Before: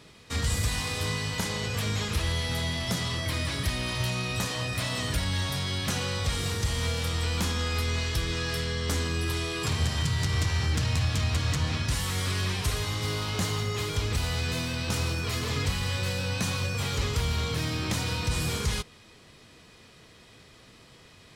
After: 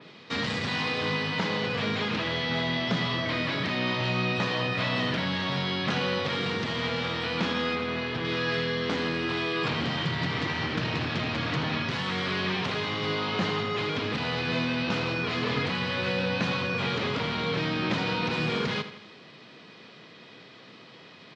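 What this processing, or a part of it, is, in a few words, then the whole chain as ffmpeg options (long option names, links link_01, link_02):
synthesiser wavefolder: -filter_complex "[0:a]aeval=exprs='0.075*(abs(mod(val(0)/0.075+3,4)-2)-1)':channel_layout=same,highpass=frequency=150:width=0.5412,highpass=frequency=150:width=1.3066,lowpass=frequency=4500:width=0.5412,lowpass=frequency=4500:width=1.3066,asettb=1/sr,asplit=3[link_01][link_02][link_03];[link_01]atrim=end=7.754[link_04];[link_02]atrim=start=7.75:end=8.25,asetpts=PTS-STARTPTS,afade=type=in:duration=0.004:curve=qsin,afade=type=out:start_time=0.496:duration=0.004:curve=qsin,highshelf=frequency=3100:gain=-9[link_05];[link_03]atrim=start=8.246[link_06];[link_04][link_05]acrossfade=duration=0.004:curve1=hsin:curve2=qsin[link_07];[link_07][link_06]acrossfade=duration=0.004:curve1=qsin:curve2=hsin,aecho=1:1:81|162|243|324|405:0.251|0.123|0.0603|0.0296|0.0145,adynamicequalizer=threshold=0.00355:dfrequency=4000:dqfactor=0.7:tfrequency=4000:tqfactor=0.7:attack=5:release=100:ratio=0.375:range=3.5:mode=cutabove:tftype=highshelf,volume=5dB"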